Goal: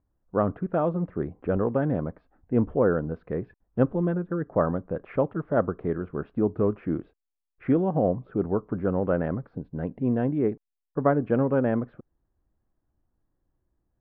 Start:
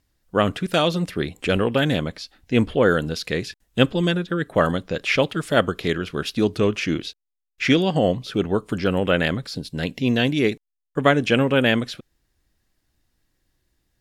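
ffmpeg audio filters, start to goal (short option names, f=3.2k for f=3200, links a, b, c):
-af "lowpass=f=1.2k:w=0.5412,lowpass=f=1.2k:w=1.3066,volume=-4dB"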